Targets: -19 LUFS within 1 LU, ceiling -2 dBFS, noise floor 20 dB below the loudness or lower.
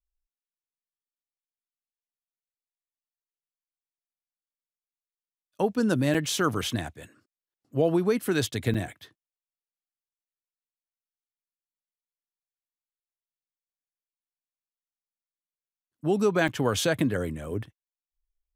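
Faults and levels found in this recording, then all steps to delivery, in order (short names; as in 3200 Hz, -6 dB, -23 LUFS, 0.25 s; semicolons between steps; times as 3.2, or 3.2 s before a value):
dropouts 3; longest dropout 5.8 ms; loudness -27.0 LUFS; peak -9.0 dBFS; loudness target -19.0 LUFS
-> interpolate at 6.14/8.74/16.48, 5.8 ms; gain +8 dB; limiter -2 dBFS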